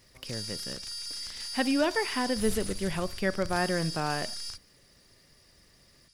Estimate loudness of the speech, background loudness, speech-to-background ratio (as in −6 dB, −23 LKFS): −31.0 LKFS, −36.5 LKFS, 5.5 dB